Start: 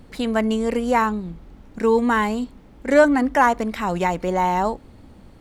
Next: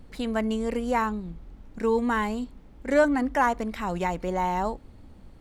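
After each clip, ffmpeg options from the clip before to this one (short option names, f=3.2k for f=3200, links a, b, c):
-af "lowshelf=f=63:g=9,volume=-6.5dB"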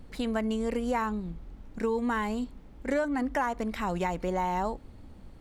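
-af "acompressor=threshold=-25dB:ratio=6"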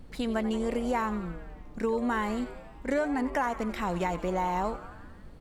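-filter_complex "[0:a]asplit=8[a][b][c][d][e][f][g][h];[b]adelay=89,afreqshift=140,volume=-15dB[i];[c]adelay=178,afreqshift=280,volume=-19.2dB[j];[d]adelay=267,afreqshift=420,volume=-23.3dB[k];[e]adelay=356,afreqshift=560,volume=-27.5dB[l];[f]adelay=445,afreqshift=700,volume=-31.6dB[m];[g]adelay=534,afreqshift=840,volume=-35.8dB[n];[h]adelay=623,afreqshift=980,volume=-39.9dB[o];[a][i][j][k][l][m][n][o]amix=inputs=8:normalize=0"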